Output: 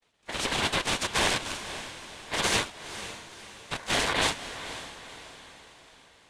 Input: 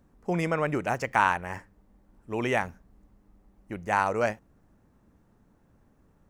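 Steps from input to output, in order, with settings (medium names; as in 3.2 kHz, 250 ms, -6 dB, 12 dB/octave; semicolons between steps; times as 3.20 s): high-pass 250 Hz 12 dB/octave; gate with hold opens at -58 dBFS; spectral gate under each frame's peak -15 dB weak; level rider gain up to 8 dB; sine folder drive 15 dB, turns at -7.5 dBFS; noise-vocoded speech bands 4; ring modulator 1.3 kHz; on a send: echo that smears into a reverb 503 ms, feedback 47%, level -12 dB; on the sum: trim -8 dB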